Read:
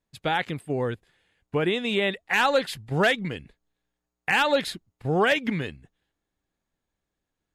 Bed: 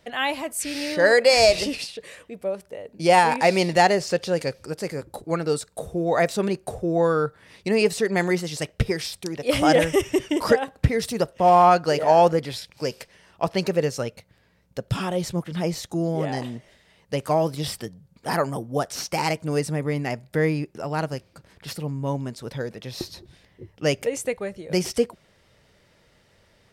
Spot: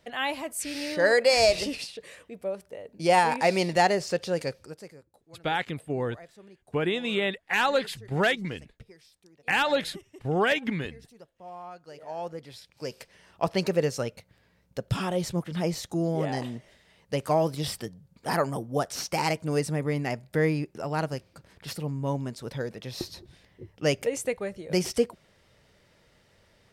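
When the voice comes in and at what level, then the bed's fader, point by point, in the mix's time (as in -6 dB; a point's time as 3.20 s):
5.20 s, -2.5 dB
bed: 4.53 s -4.5 dB
5.19 s -27.5 dB
11.73 s -27.5 dB
13.20 s -2.5 dB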